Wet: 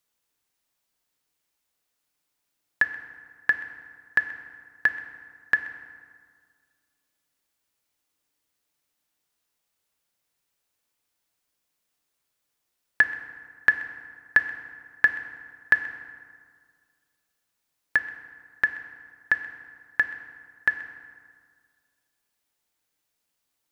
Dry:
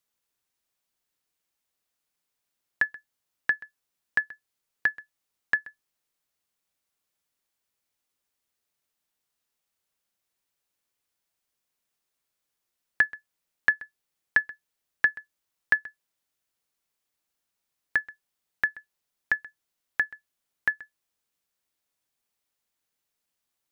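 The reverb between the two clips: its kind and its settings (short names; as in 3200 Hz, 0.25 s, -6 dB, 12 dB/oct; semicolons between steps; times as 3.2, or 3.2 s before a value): FDN reverb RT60 1.9 s, low-frequency decay 1.1×, high-frequency decay 0.6×, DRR 8 dB; gain +3 dB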